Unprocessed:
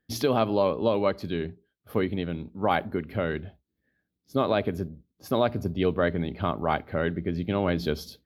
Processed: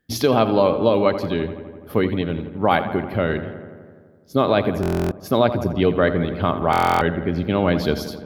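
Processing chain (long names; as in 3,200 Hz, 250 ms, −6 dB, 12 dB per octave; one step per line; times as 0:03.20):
feedback echo with a low-pass in the loop 84 ms, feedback 75%, low-pass 3,100 Hz, level −11.5 dB
buffer that repeats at 0:04.81/0:06.71, samples 1,024, times 12
level +6.5 dB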